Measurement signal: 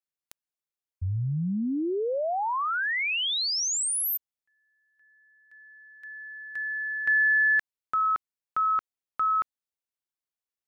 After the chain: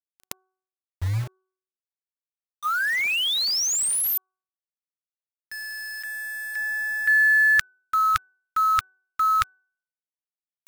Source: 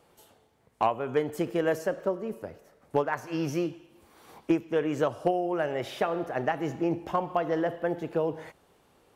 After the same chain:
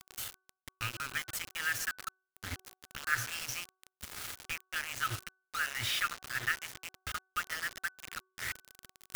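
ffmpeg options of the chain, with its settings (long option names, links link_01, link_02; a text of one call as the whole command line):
ffmpeg -i in.wav -af "areverse,acompressor=mode=upward:threshold=-38dB:ratio=2.5:attack=54:release=21:knee=2.83:detection=peak,areverse,afftfilt=real='re*(1-between(b*sr/4096,120,1200))':imag='im*(1-between(b*sr/4096,120,1200))':win_size=4096:overlap=0.75,acontrast=44,acrusher=bits=5:mix=0:aa=0.000001,bandreject=frequency=375.2:width_type=h:width=4,bandreject=frequency=750.4:width_type=h:width=4,bandreject=frequency=1125.6:width_type=h:width=4,bandreject=frequency=1500.8:width_type=h:width=4,volume=-1.5dB" out.wav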